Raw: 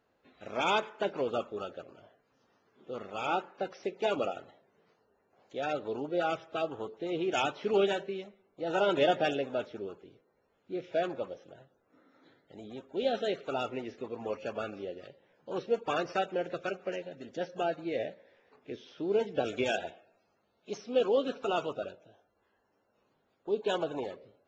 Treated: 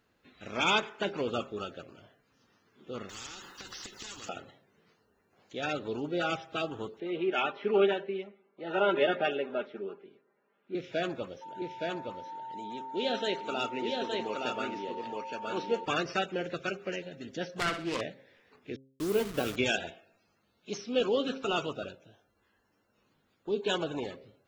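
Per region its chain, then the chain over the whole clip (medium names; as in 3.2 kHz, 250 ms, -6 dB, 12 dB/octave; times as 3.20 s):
3.09–4.29 s: static phaser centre 630 Hz, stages 6 + compression 5:1, threshold -41 dBFS + spectrum-flattening compressor 4:1
7.00–10.75 s: band-pass 300–2300 Hz + distance through air 62 m + comb 5 ms, depth 53%
11.41–15.84 s: high-pass 220 Hz + whistle 900 Hz -41 dBFS + delay 868 ms -3 dB
17.53–18.01 s: self-modulated delay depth 0.45 ms + flutter echo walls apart 10.7 m, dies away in 0.41 s
18.76–19.56 s: send-on-delta sampling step -41 dBFS + peaking EQ 1.2 kHz +6 dB 0.37 oct
whole clip: peaking EQ 650 Hz -9.5 dB 1.8 oct; de-hum 133.5 Hz, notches 6; trim +6.5 dB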